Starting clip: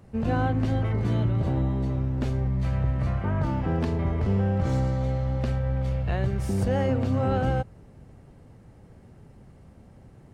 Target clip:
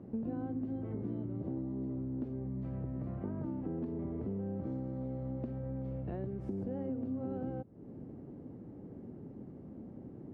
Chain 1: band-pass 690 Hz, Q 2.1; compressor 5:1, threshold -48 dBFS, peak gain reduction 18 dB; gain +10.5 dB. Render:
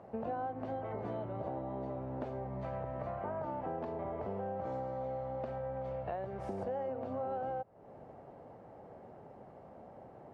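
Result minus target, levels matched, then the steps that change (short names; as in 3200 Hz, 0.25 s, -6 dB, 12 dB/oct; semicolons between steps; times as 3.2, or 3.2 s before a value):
250 Hz band -8.5 dB
change: band-pass 290 Hz, Q 2.1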